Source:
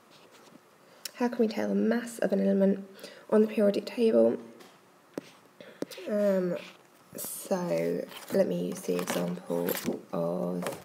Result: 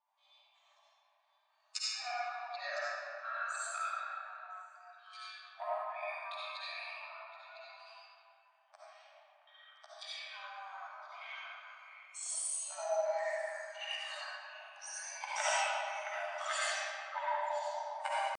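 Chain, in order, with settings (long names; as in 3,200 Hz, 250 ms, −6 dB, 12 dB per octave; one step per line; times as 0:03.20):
spectral dynamics exaggerated over time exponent 2
high-shelf EQ 2,800 Hz −7 dB
echo through a band-pass that steps 197 ms, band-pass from 750 Hz, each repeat 1.4 octaves, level −7 dB
in parallel at +2 dB: brickwall limiter −25.5 dBFS, peak gain reduction 10.5 dB
on the sum: downward compressor 8 to 1, threshold −31 dBFS, peak gain reduction 14 dB
tempo change 0.59×
soft clipping −23 dBFS, distortion −26 dB
frequency shifter −250 Hz
comb and all-pass reverb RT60 2.2 s, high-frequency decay 0.65×, pre-delay 30 ms, DRR −9 dB
brick-wall band-pass 560–9,500 Hz
level +1 dB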